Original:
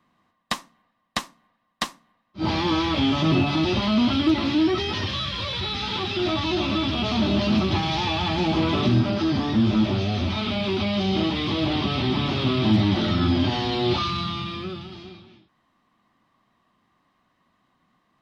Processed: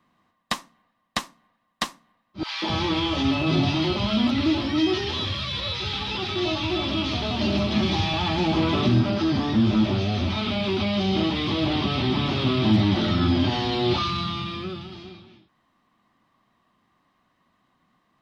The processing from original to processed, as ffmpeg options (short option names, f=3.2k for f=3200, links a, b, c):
-filter_complex "[0:a]asettb=1/sr,asplit=3[a][b][c];[a]atrim=end=2.434[d];[b]atrim=start=2.43:end=8.14,asetpts=PTS-STARTPTS,afade=t=in:d=0.004:c=qsin,afade=t=out:st=5.706:d=0.004:c=qsin,acrossover=split=240|1200[e][f][g];[f]adelay=190[h];[e]adelay=260[i];[i][h][g]amix=inputs=3:normalize=0,atrim=end_sample=251811[j];[c]atrim=start=8.136[k];[d][j]acrossfade=d=0.004:c1=hsin:c2=qsin[l];[l][k]acrossfade=d=0.004:c1=qsin:c2=hsin"